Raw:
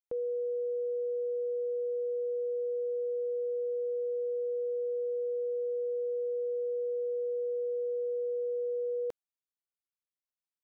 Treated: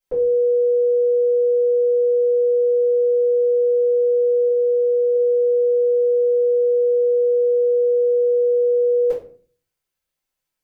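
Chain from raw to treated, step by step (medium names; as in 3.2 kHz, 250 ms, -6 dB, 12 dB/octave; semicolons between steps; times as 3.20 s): 4.48–5.15 s: distance through air 220 m; simulated room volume 32 m³, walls mixed, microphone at 2.1 m; trim +2.5 dB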